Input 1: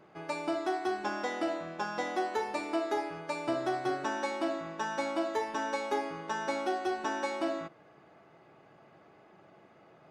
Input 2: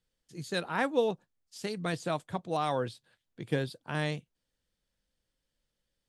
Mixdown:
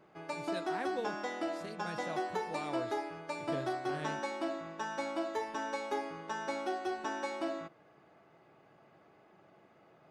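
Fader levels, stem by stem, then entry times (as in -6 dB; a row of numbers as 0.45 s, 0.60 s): -4.0 dB, -11.5 dB; 0.00 s, 0.00 s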